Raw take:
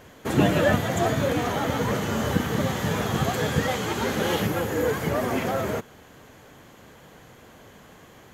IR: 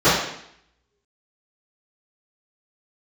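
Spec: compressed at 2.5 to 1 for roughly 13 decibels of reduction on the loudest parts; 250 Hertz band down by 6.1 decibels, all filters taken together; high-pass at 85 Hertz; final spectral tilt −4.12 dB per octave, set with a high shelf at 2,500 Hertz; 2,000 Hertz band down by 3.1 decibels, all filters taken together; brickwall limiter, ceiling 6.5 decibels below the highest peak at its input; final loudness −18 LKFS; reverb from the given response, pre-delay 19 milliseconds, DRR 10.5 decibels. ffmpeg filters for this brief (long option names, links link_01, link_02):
-filter_complex "[0:a]highpass=85,equalizer=frequency=250:width_type=o:gain=-8.5,equalizer=frequency=2000:width_type=o:gain=-6,highshelf=frequency=2500:gain=5,acompressor=threshold=-39dB:ratio=2.5,alimiter=level_in=5.5dB:limit=-24dB:level=0:latency=1,volume=-5.5dB,asplit=2[link_01][link_02];[1:a]atrim=start_sample=2205,adelay=19[link_03];[link_02][link_03]afir=irnorm=-1:irlink=0,volume=-35.5dB[link_04];[link_01][link_04]amix=inputs=2:normalize=0,volume=21.5dB"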